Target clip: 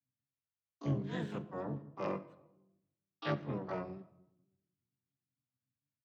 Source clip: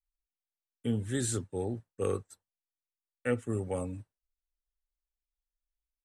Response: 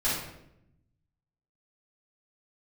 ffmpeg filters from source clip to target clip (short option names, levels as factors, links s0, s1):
-filter_complex "[0:a]bandreject=f=266.4:t=h:w=4,bandreject=f=532.8:t=h:w=4,bandreject=f=799.2:t=h:w=4,aeval=exprs='val(0)*sin(2*PI*94*n/s)':c=same,highpass=f=120:w=0.5412,highpass=f=120:w=1.3066,equalizer=f=140:t=q:w=4:g=8,equalizer=f=270:t=q:w=4:g=-8,equalizer=f=400:t=q:w=4:g=-8,lowpass=f=2600:w=0.5412,lowpass=f=2600:w=1.3066,asplit=2[s0][s1];[1:a]atrim=start_sample=2205[s2];[s1][s2]afir=irnorm=-1:irlink=0,volume=0.0708[s3];[s0][s3]amix=inputs=2:normalize=0,asplit=4[s4][s5][s6][s7];[s5]asetrate=29433,aresample=44100,atempo=1.49831,volume=0.126[s8];[s6]asetrate=66075,aresample=44100,atempo=0.66742,volume=0.224[s9];[s7]asetrate=88200,aresample=44100,atempo=0.5,volume=0.501[s10];[s4][s8][s9][s10]amix=inputs=4:normalize=0,volume=0.794"